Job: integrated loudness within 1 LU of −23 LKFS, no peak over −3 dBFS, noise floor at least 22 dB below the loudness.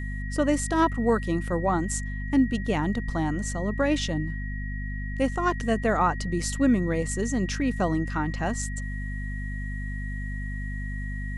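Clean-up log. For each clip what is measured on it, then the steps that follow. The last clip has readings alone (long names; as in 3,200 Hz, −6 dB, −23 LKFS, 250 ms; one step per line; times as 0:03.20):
mains hum 50 Hz; hum harmonics up to 250 Hz; level of the hum −29 dBFS; interfering tone 1,900 Hz; level of the tone −39 dBFS; integrated loudness −27.5 LKFS; sample peak −10.0 dBFS; target loudness −23.0 LKFS
→ hum removal 50 Hz, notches 5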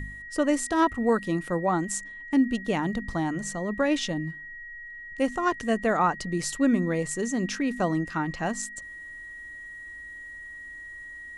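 mains hum none found; interfering tone 1,900 Hz; level of the tone −39 dBFS
→ notch filter 1,900 Hz, Q 30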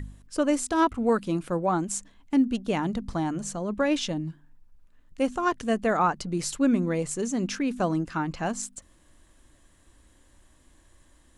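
interfering tone none found; integrated loudness −27.0 LKFS; sample peak −11.5 dBFS; target loudness −23.0 LKFS
→ level +4 dB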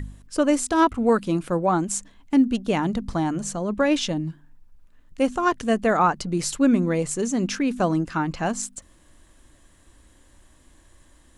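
integrated loudness −23.0 LKFS; sample peak −7.5 dBFS; background noise floor −56 dBFS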